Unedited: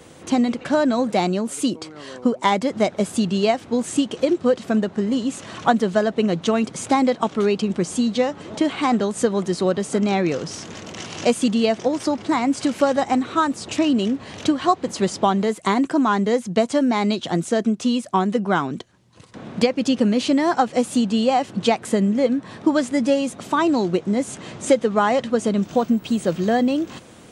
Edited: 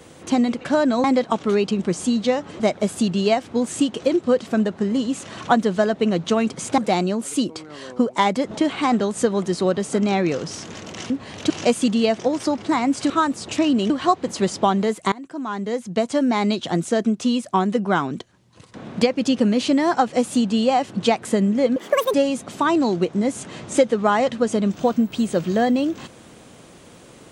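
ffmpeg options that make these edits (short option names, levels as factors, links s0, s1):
-filter_complex "[0:a]asplit=12[s0][s1][s2][s3][s4][s5][s6][s7][s8][s9][s10][s11];[s0]atrim=end=1.042[s12];[s1]atrim=start=6.948:end=8.512[s13];[s2]atrim=start=2.768:end=6.952[s14];[s3]atrim=start=1.038:end=2.772[s15];[s4]atrim=start=8.508:end=11.102[s16];[s5]atrim=start=14.098:end=14.502[s17];[s6]atrim=start=11.098:end=12.702[s18];[s7]atrim=start=13.298:end=14.102[s19];[s8]atrim=start=14.498:end=15.72,asetpts=PTS-STARTPTS,afade=t=out:st=1.218:d=0.004:c=hsin:silence=0.0707946[s20];[s9]atrim=start=15.72:end=22.364,asetpts=PTS-STARTPTS,afade=t=in:d=1.21:silence=0.0707946[s21];[s10]atrim=start=22.36:end=23.06,asetpts=PTS-STARTPTS,asetrate=81144,aresample=44100,atrim=end_sample=16777,asetpts=PTS-STARTPTS[s22];[s11]atrim=start=23.056[s23];[s12][s13]acrossfade=d=0.004:c1=hsin:c2=hsin[s24];[s24][s14]acrossfade=d=0.004:c1=hsin:c2=hsin[s25];[s25][s15]acrossfade=d=0.004:c1=hsin:c2=hsin[s26];[s26][s16]acrossfade=d=0.004:c1=hsin:c2=hsin[s27];[s27][s17]acrossfade=d=0.004:c1=hsin:c2=hsin[s28];[s28][s18]acrossfade=d=0.004:c1=hsin:c2=hsin[s29];[s29][s19]acrossfade=d=0.004:c1=hsin:c2=hsin[s30];[s20][s21]concat=n=2:v=0:a=1[s31];[s30][s31]acrossfade=d=0.004:c1=hsin:c2=hsin[s32];[s32][s22]acrossfade=d=0.004:c1=hsin:c2=hsin[s33];[s33][s23]acrossfade=d=0.004:c1=hsin:c2=hsin"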